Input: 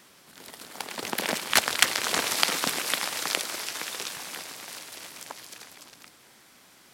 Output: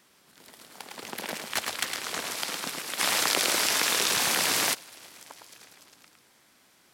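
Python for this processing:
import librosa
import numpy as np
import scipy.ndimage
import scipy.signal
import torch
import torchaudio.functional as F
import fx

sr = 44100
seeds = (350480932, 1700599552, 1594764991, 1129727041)

p1 = 10.0 ** (-9.5 / 20.0) * np.tanh(x / 10.0 ** (-9.5 / 20.0))
p2 = p1 + fx.echo_single(p1, sr, ms=109, db=-5.5, dry=0)
p3 = fx.env_flatten(p2, sr, amount_pct=100, at=(2.98, 4.73), fade=0.02)
y = p3 * librosa.db_to_amplitude(-7.0)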